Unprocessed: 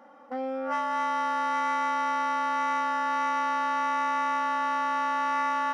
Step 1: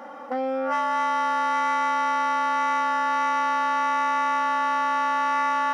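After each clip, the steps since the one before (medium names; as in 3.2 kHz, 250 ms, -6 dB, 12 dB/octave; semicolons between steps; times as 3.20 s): in parallel at -2 dB: compressor with a negative ratio -38 dBFS, ratio -1; on the sum: bass shelf 160 Hz -9 dB; trim +2.5 dB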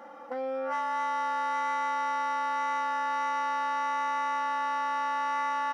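comb 5.9 ms, depth 39%; trim -7.5 dB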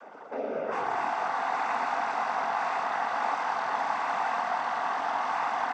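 frequency-shifting echo 115 ms, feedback 62%, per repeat -44 Hz, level -7 dB; noise-vocoded speech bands 16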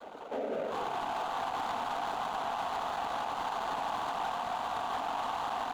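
median filter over 25 samples; peak limiter -30 dBFS, peak gain reduction 10.5 dB; trim +2.5 dB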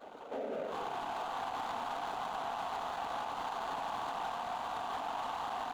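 reverse echo 33 ms -13 dB; trim -4 dB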